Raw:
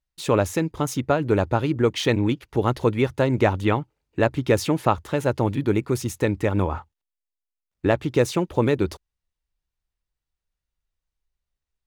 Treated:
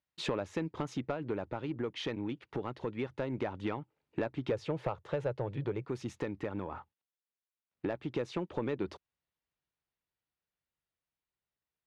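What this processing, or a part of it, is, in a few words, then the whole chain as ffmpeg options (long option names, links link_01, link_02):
AM radio: -filter_complex "[0:a]asettb=1/sr,asplit=3[link_01][link_02][link_03];[link_01]atrim=end=4.514[link_04];[link_02]atrim=start=4.51:end=5.85,asetpts=PTS-STARTPTS,afade=type=in:duration=0.004:curve=qsin,afade=type=out:start_time=1.336:duration=0.004:curve=qsin,equalizer=frequency=125:width_type=o:width=1:gain=10,equalizer=frequency=250:width_type=o:width=1:gain=-10,equalizer=frequency=500:width_type=o:width=1:gain=9[link_05];[link_03]atrim=start=5.846[link_06];[link_04][link_05]acrossfade=duration=0.004:curve1=hsin:curve2=qsin[link_07];[link_07][link_06]acrossfade=duration=0.004:curve1=qsin:curve2=hsin,highpass=140,lowpass=3600,acompressor=threshold=-30dB:ratio=6,asoftclip=type=tanh:threshold=-22dB,tremolo=f=0.22:d=0.27"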